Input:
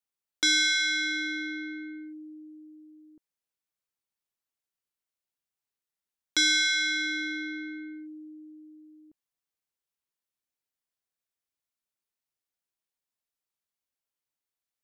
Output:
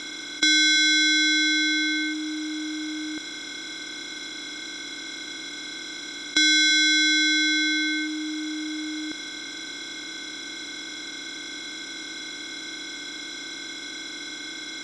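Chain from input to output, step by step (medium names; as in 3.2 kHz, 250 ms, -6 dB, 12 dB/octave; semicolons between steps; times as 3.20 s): spectral levelling over time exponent 0.2; distance through air 61 m; trim +4.5 dB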